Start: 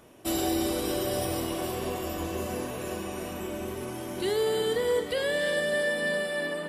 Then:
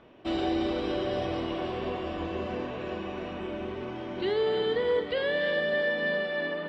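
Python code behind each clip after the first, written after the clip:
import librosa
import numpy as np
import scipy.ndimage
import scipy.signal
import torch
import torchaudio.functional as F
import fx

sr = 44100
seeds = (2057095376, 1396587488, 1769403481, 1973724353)

y = scipy.signal.sosfilt(scipy.signal.butter(4, 3700.0, 'lowpass', fs=sr, output='sos'), x)
y = fx.peak_eq(y, sr, hz=100.0, db=-3.5, octaves=0.93)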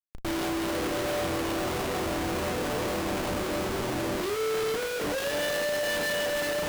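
y = fx.schmitt(x, sr, flips_db=-43.5)
y = fx.doubler(y, sr, ms=34.0, db=-8)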